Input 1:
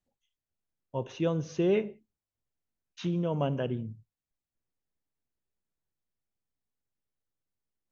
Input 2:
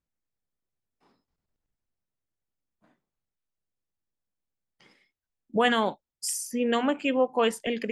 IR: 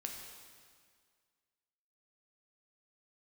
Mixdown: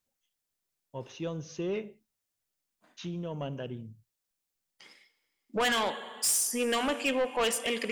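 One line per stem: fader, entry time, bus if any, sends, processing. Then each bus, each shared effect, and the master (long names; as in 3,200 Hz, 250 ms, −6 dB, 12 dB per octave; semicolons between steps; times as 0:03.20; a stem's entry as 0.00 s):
−6.5 dB, 0.00 s, no send, no processing
−0.5 dB, 0.00 s, send −8 dB, high-pass filter 410 Hz 6 dB per octave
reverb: on, RT60 1.9 s, pre-delay 4 ms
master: high-shelf EQ 2,900 Hz +9 dB; soft clipping −23 dBFS, distortion −8 dB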